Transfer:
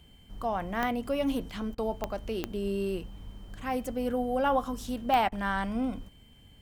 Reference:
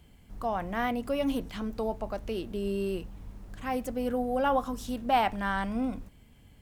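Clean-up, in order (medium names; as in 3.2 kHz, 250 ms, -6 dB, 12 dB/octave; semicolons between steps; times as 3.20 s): de-click; band-stop 3.1 kHz, Q 30; interpolate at 1.75/5.29 s, 29 ms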